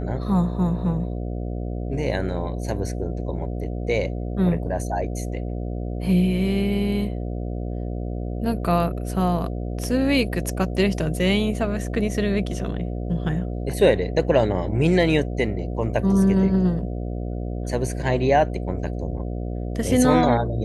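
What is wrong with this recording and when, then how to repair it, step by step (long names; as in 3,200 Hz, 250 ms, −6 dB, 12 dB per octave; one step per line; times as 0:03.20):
mains buzz 60 Hz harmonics 12 −28 dBFS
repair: hum removal 60 Hz, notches 12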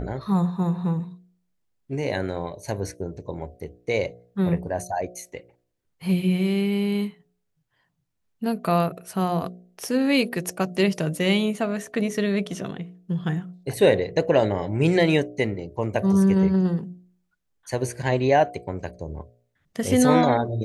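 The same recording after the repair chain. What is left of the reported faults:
none of them is left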